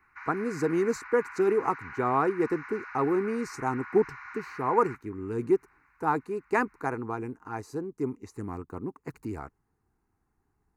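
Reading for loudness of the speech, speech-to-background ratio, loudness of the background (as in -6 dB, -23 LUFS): -30.0 LUFS, 12.5 dB, -42.5 LUFS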